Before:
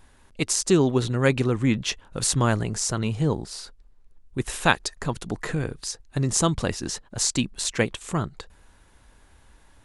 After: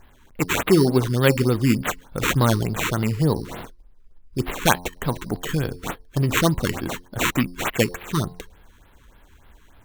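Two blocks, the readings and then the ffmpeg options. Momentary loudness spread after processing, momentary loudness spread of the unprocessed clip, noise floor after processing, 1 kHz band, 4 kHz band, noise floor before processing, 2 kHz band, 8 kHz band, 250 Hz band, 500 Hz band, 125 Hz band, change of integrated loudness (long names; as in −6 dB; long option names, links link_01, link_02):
11 LU, 10 LU, −53 dBFS, +3.5 dB, +1.0 dB, −56 dBFS, +3.5 dB, −5.0 dB, +3.0 dB, +3.0 dB, +3.5 dB, +2.5 dB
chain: -af "bandreject=frequency=88.39:width_type=h:width=4,bandreject=frequency=176.78:width_type=h:width=4,bandreject=frequency=265.17:width_type=h:width=4,bandreject=frequency=353.56:width_type=h:width=4,bandreject=frequency=441.95:width_type=h:width=4,bandreject=frequency=530.34:width_type=h:width=4,bandreject=frequency=618.73:width_type=h:width=4,bandreject=frequency=707.12:width_type=h:width=4,bandreject=frequency=795.51:width_type=h:width=4,bandreject=frequency=883.9:width_type=h:width=4,bandreject=frequency=972.29:width_type=h:width=4,bandreject=frequency=1060.68:width_type=h:width=4,acrusher=samples=9:mix=1:aa=0.000001,afftfilt=real='re*(1-between(b*sr/1024,600*pow(7600/600,0.5+0.5*sin(2*PI*3.4*pts/sr))/1.41,600*pow(7600/600,0.5+0.5*sin(2*PI*3.4*pts/sr))*1.41))':imag='im*(1-between(b*sr/1024,600*pow(7600/600,0.5+0.5*sin(2*PI*3.4*pts/sr))/1.41,600*pow(7600/600,0.5+0.5*sin(2*PI*3.4*pts/sr))*1.41))':win_size=1024:overlap=0.75,volume=3.5dB"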